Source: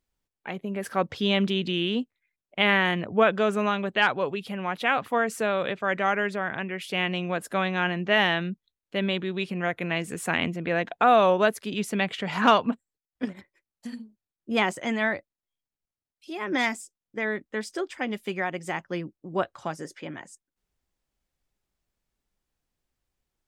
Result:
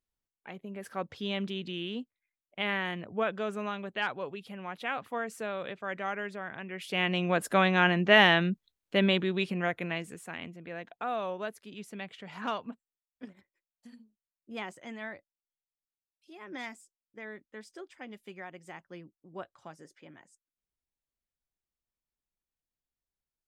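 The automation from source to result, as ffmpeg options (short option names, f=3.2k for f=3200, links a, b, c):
-af "volume=2dB,afade=t=in:st=6.62:d=0.81:silence=0.251189,afade=t=out:st=9.01:d=0.85:silence=0.446684,afade=t=out:st=9.86:d=0.39:silence=0.316228"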